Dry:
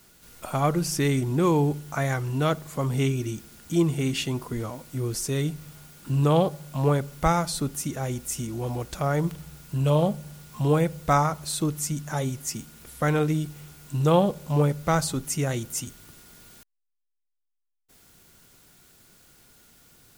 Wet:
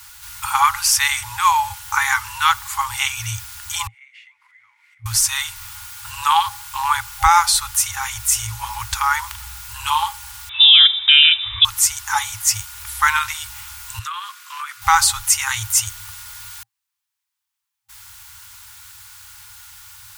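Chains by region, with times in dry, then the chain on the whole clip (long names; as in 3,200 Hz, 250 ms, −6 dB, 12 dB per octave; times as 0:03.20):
0:03.87–0:05.06: downward compressor 5 to 1, threshold −41 dBFS + resonant band-pass 2,100 Hz, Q 11
0:10.49–0:11.65: parametric band 570 Hz +9.5 dB 0.34 octaves + voice inversion scrambler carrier 3,700 Hz
0:13.99–0:14.82: Butterworth high-pass 1,100 Hz 72 dB per octave + spectral tilt −2.5 dB per octave + downward compressor, threshold −40 dBFS
whole clip: high-pass filter 79 Hz 6 dB per octave; brick-wall band-stop 110–800 Hz; boost into a limiter +16 dB; level −1 dB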